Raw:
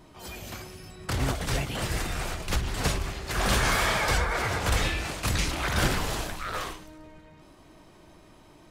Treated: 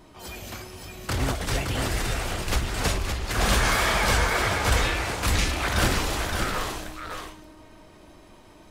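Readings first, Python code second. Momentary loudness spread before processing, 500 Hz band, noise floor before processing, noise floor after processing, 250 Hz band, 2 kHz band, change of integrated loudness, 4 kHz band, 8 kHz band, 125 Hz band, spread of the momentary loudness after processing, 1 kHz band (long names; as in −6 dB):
15 LU, +3.0 dB, −54 dBFS, −51 dBFS, +2.5 dB, +3.0 dB, +3.0 dB, +3.0 dB, +3.0 dB, +2.5 dB, 16 LU, +3.0 dB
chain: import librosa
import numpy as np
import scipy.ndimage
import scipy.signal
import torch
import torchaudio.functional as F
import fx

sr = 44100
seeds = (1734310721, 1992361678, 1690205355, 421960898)

p1 = fx.peak_eq(x, sr, hz=150.0, db=-8.5, octaves=0.25)
p2 = p1 + fx.echo_single(p1, sr, ms=567, db=-5.0, dry=0)
y = p2 * 10.0 ** (2.0 / 20.0)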